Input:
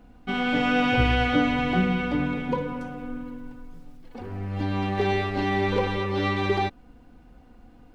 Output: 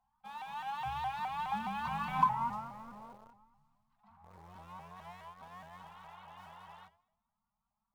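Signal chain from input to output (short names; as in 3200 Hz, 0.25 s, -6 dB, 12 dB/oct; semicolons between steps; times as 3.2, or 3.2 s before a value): Doppler pass-by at 2.23, 43 m/s, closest 4.7 m; elliptic band-stop 210–860 Hz; low shelf 60 Hz -8.5 dB; notches 50/100 Hz; in parallel at -9 dB: companded quantiser 4-bit; on the sum: compressor 3:1, threshold -37 dBFS, peak gain reduction 10 dB; band shelf 740 Hz +15 dB; two-slope reverb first 0.79 s, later 2.3 s, from -27 dB, DRR 12.5 dB; spectral repair 5.85–6.83, 530–4100 Hz before; shaped vibrato saw up 4.8 Hz, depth 160 cents; gain -2 dB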